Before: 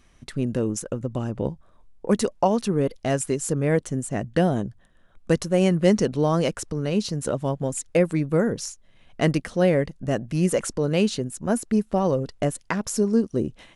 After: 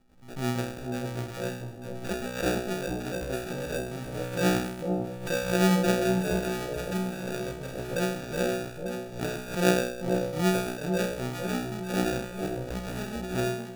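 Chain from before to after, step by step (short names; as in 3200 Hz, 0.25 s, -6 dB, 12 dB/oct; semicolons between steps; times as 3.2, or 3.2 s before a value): resonator bank B2 fifth, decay 0.68 s; sample-and-hold 42×; on a send: echo with dull and thin repeats by turns 0.449 s, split 850 Hz, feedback 57%, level -4 dB; on the sum: backwards sustainer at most 100 dB/s; gain +8.5 dB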